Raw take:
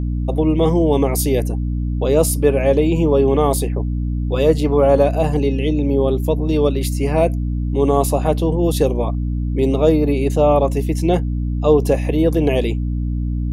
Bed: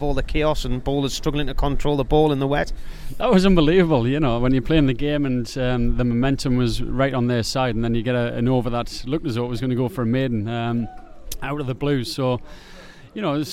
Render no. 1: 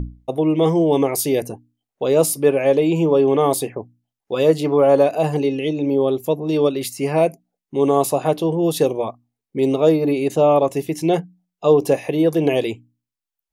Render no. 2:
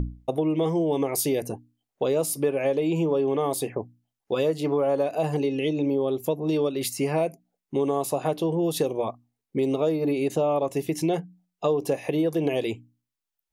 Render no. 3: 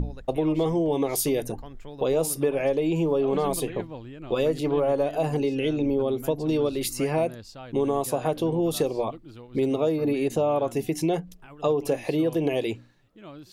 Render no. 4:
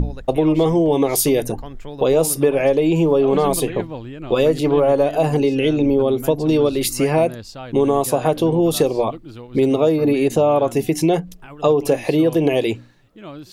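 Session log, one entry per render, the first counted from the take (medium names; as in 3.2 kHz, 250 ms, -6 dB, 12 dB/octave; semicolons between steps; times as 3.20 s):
hum notches 60/120/180/240/300 Hz
compression 4:1, threshold -22 dBFS, peak gain reduction 11.5 dB
add bed -21 dB
trim +8 dB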